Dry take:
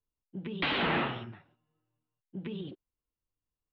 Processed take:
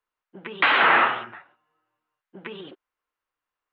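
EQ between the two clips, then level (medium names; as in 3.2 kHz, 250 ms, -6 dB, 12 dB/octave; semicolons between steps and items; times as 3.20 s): tone controls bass -15 dB, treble -8 dB; peaking EQ 1.4 kHz +14 dB 2.1 oct; +3.0 dB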